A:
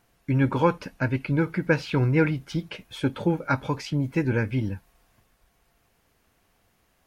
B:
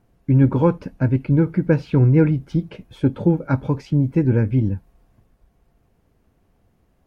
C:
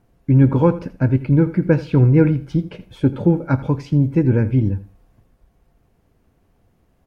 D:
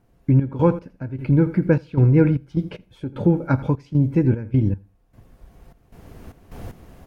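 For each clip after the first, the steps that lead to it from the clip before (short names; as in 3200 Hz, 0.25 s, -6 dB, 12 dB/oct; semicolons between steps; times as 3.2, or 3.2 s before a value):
tilt shelf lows +9 dB, about 790 Hz
echo 83 ms -16.5 dB; on a send at -19 dB: reverb, pre-delay 3 ms; on the sum: gain +1.5 dB
recorder AGC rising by 13 dB/s; step gate "xx.x..xxx." 76 bpm -12 dB; gain -2 dB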